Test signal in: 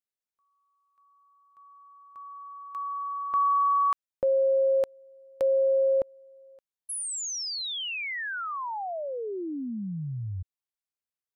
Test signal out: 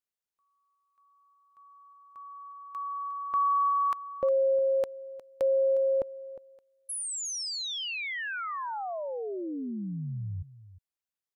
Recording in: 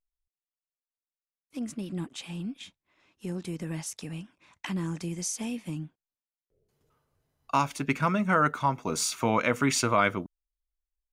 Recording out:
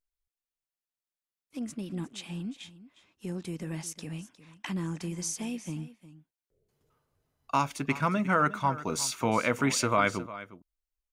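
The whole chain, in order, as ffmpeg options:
-af "aecho=1:1:358:0.158,volume=0.841"

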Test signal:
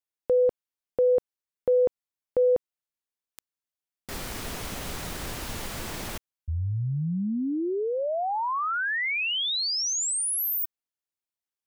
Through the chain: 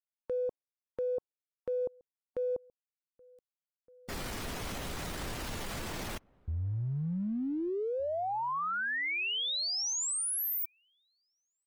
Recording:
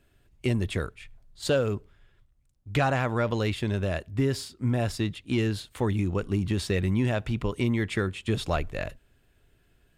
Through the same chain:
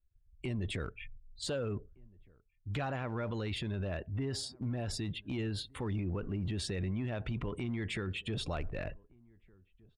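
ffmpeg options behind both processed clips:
-filter_complex "[0:a]afftdn=nr=34:nf=-46,acompressor=threshold=0.0224:ratio=5:attack=0.13:release=30:knee=1:detection=rms,asplit=2[s0][s1];[s1]adelay=1516,volume=0.0501,highshelf=f=4000:g=-34.1[s2];[s0][s2]amix=inputs=2:normalize=0,volume=1.12"

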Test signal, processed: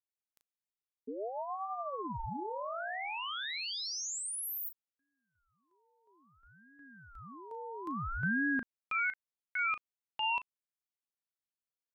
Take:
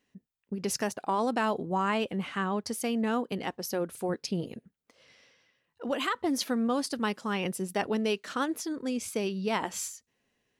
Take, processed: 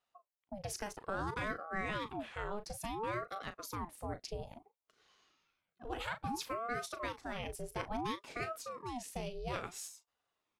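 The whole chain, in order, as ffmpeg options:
-filter_complex "[0:a]asplit=2[s0][s1];[s1]adelay=37,volume=0.282[s2];[s0][s2]amix=inputs=2:normalize=0,aeval=exprs='val(0)*sin(2*PI*590*n/s+590*0.65/0.59*sin(2*PI*0.59*n/s))':c=same,volume=0.422"

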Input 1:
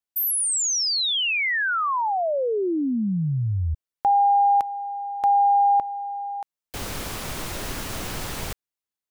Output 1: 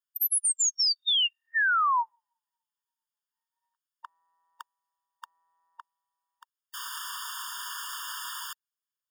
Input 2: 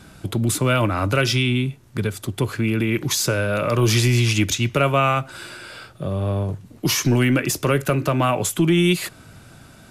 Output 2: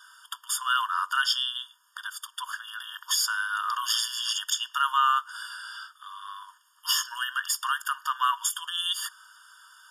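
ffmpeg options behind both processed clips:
-af "asubboost=boost=10:cutoff=67,afftfilt=real='re*eq(mod(floor(b*sr/1024/920),2),1)':imag='im*eq(mod(floor(b*sr/1024/920),2),1)':win_size=1024:overlap=0.75"

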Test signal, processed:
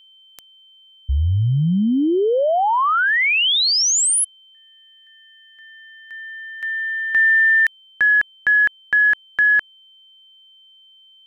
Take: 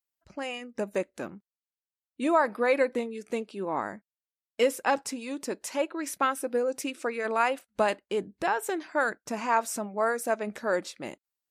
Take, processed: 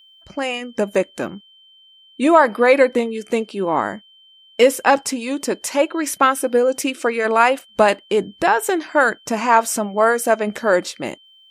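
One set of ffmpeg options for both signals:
-af "acontrast=49,aeval=exprs='val(0)+0.00224*sin(2*PI*3100*n/s)':c=same,volume=1.88"

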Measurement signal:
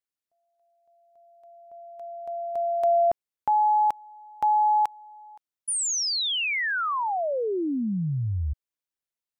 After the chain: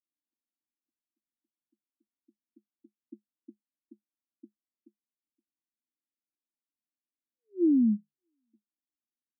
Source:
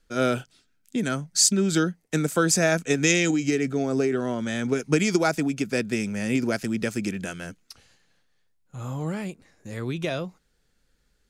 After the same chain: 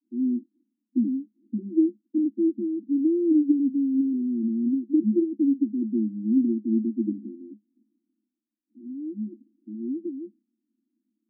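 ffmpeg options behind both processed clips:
-af "acontrast=20,asuperpass=centerf=270:order=20:qfactor=1.9"

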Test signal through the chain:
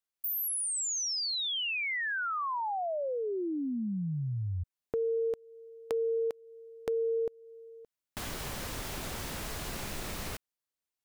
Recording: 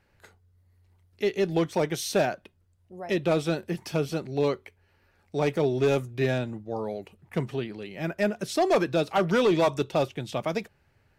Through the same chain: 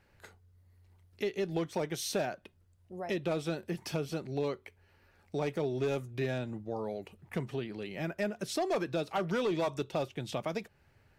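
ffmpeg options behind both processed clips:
-af "acompressor=threshold=0.0158:ratio=2"

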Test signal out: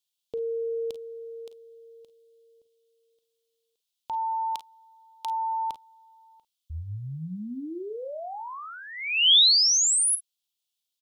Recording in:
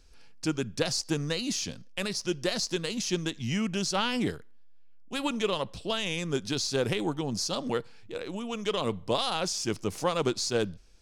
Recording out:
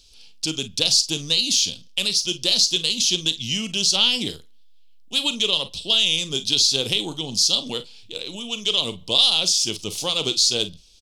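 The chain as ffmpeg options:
-af "highshelf=f=2400:t=q:w=3:g=11.5,aecho=1:1:38|50:0.2|0.168,volume=0.891"

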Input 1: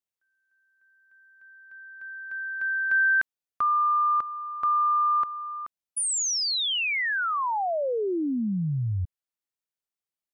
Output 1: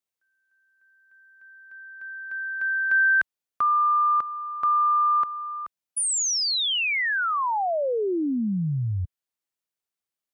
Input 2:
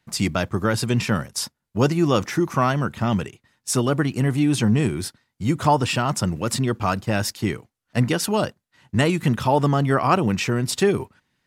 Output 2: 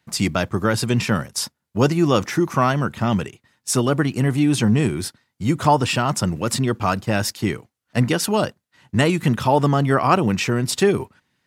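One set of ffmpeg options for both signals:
-af "highpass=f=58:p=1,volume=1.26"

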